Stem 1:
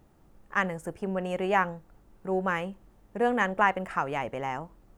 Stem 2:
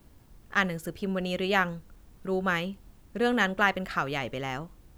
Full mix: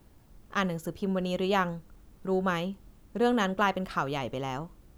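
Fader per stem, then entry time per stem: -6.0, -2.5 dB; 0.00, 0.00 s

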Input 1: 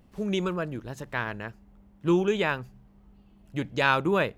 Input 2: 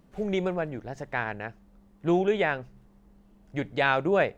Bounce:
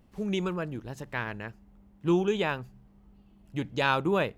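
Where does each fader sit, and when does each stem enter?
-2.5, -15.5 dB; 0.00, 0.00 s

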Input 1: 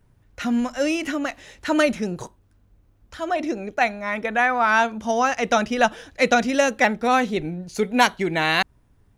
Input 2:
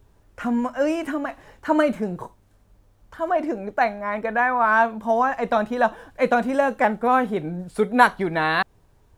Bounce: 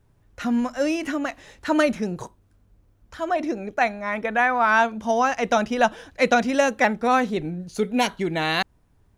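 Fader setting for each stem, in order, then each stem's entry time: -3.5, -9.5 dB; 0.00, 0.00 s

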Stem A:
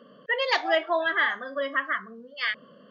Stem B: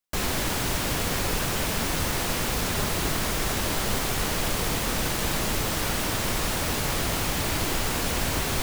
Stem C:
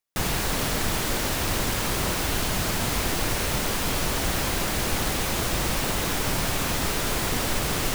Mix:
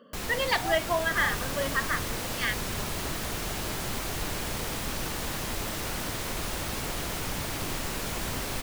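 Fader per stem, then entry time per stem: -2.5, -8.0, -11.5 dB; 0.00, 0.00, 1.00 s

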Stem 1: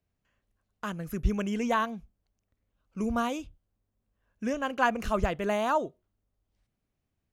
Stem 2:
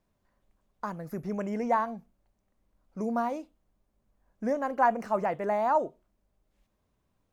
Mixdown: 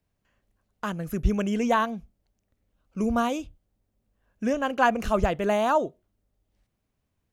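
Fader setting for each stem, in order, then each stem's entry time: +3.0, -9.5 dB; 0.00, 0.00 s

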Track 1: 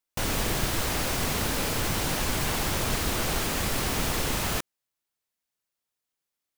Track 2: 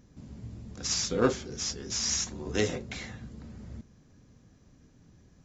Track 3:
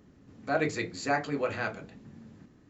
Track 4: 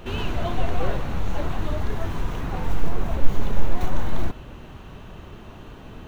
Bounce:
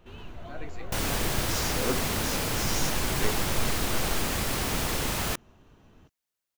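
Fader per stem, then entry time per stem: -1.0, -6.0, -15.0, -16.5 dB; 0.75, 0.65, 0.00, 0.00 s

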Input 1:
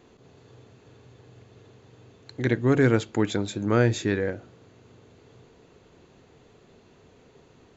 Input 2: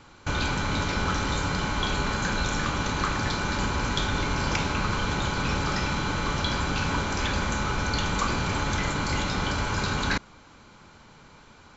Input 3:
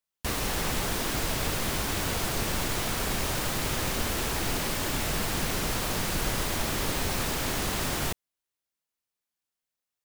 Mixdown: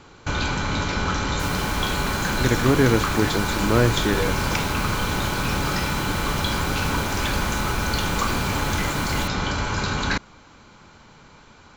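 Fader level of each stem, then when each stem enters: +1.5, +2.5, -3.0 dB; 0.00, 0.00, 1.15 s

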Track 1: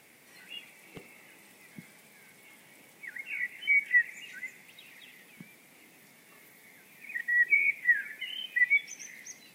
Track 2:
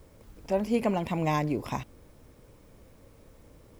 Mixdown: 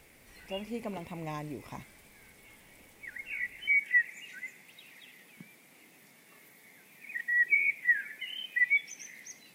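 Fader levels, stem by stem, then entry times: -1.5, -11.5 dB; 0.00, 0.00 s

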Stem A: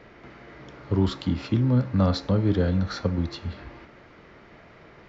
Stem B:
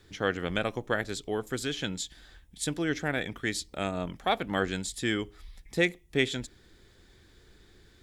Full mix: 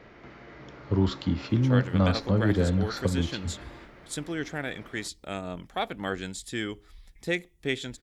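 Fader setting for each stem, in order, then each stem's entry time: -1.5, -3.0 dB; 0.00, 1.50 s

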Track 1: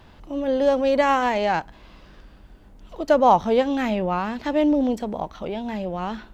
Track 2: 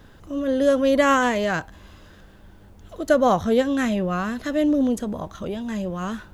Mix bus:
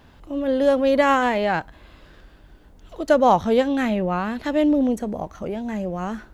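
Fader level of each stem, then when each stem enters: -3.0, -6.5 dB; 0.00, 0.00 s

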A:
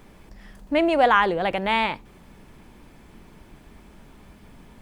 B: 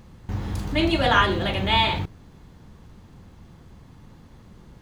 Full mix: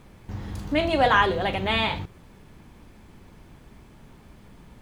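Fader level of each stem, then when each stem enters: -3.0, -5.5 dB; 0.00, 0.00 s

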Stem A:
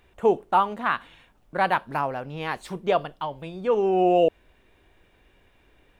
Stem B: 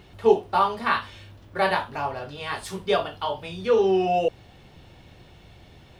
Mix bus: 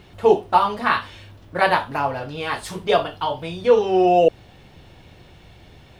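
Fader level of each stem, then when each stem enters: +1.0, +2.5 dB; 0.00, 0.00 s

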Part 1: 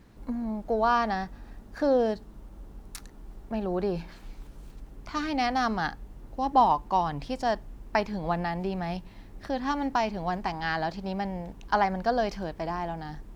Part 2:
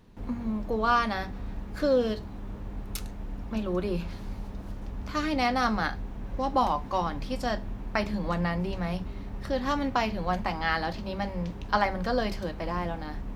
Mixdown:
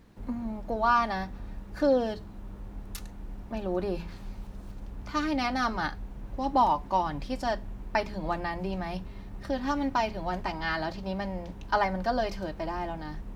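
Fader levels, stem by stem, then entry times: -2.5, -6.5 dB; 0.00, 0.00 s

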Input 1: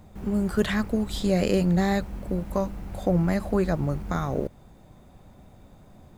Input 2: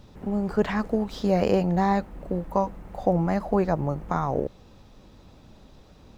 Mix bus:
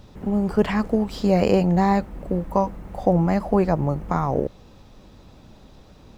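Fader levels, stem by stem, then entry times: -11.0, +3.0 dB; 0.00, 0.00 s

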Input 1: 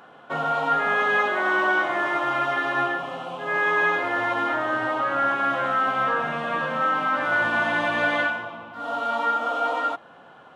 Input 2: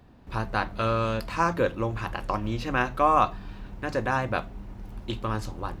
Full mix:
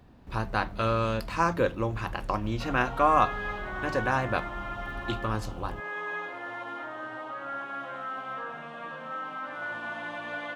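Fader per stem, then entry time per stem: -13.5, -1.0 dB; 2.30, 0.00 s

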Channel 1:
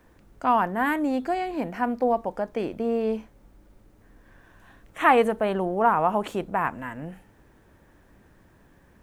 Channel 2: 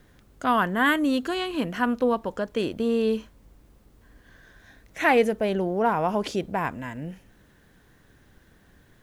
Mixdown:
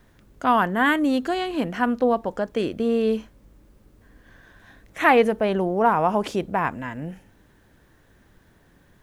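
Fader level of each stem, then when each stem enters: -4.0, -2.0 dB; 0.00, 0.00 s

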